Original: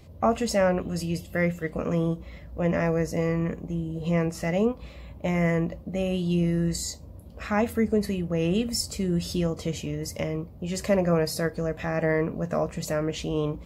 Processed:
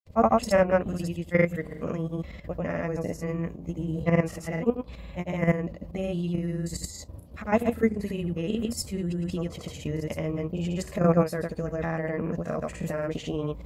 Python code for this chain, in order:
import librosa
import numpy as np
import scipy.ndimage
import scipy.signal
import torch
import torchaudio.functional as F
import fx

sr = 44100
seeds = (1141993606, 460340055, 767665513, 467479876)

y = fx.dynamic_eq(x, sr, hz=5100.0, q=1.2, threshold_db=-50.0, ratio=4.0, max_db=-6)
y = fx.level_steps(y, sr, step_db=11)
y = fx.granulator(y, sr, seeds[0], grain_ms=100.0, per_s=20.0, spray_ms=100.0, spread_st=0)
y = y * librosa.db_to_amplitude(5.0)